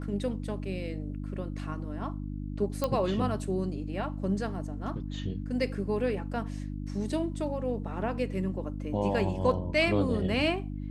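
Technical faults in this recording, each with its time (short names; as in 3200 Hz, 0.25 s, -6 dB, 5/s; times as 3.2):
hum 50 Hz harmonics 6 -36 dBFS
2.84 pop -15 dBFS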